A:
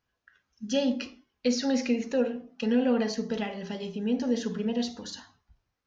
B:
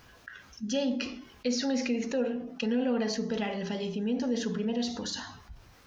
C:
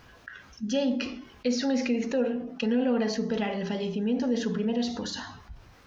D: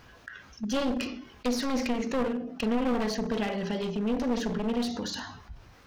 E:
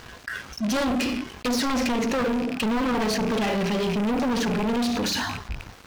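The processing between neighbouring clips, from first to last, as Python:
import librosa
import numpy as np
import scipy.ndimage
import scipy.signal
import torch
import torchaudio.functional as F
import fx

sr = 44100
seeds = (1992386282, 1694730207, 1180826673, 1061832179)

y1 = fx.env_flatten(x, sr, amount_pct=50)
y1 = F.gain(torch.from_numpy(y1), -5.0).numpy()
y2 = fx.high_shelf(y1, sr, hz=5300.0, db=-8.0)
y2 = F.gain(torch.from_numpy(y2), 3.0).numpy()
y3 = np.minimum(y2, 2.0 * 10.0 ** (-27.0 / 20.0) - y2)
y4 = fx.rattle_buzz(y3, sr, strikes_db=-45.0, level_db=-33.0)
y4 = fx.leveller(y4, sr, passes=5)
y4 = F.gain(torch.from_numpy(y4), -5.0).numpy()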